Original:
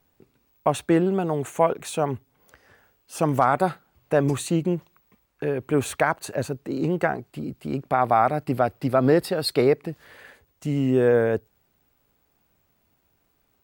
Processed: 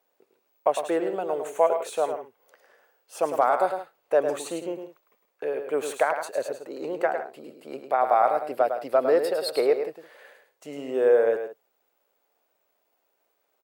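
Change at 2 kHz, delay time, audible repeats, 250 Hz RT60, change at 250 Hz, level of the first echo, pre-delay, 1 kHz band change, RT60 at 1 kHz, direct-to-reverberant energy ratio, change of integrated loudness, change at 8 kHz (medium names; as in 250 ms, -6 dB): -4.0 dB, 105 ms, 2, no reverb, -11.0 dB, -7.5 dB, no reverb, -1.0 dB, no reverb, no reverb, -2.0 dB, -4.5 dB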